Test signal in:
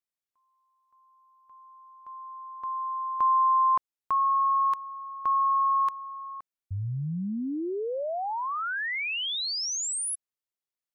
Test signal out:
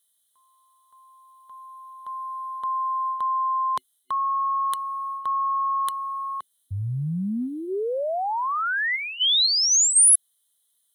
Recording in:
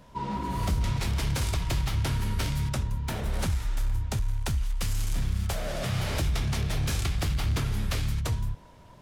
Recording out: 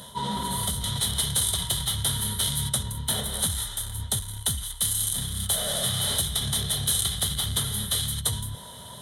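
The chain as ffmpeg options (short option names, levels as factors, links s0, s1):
-af "superequalizer=6b=0.355:12b=0.316:13b=3.55:14b=0.631:16b=3.98,areverse,acompressor=threshold=0.0282:ratio=10:attack=0.9:release=160:knee=6:detection=rms,areverse,highpass=82,highshelf=f=4000:g=11.5,volume=2.51"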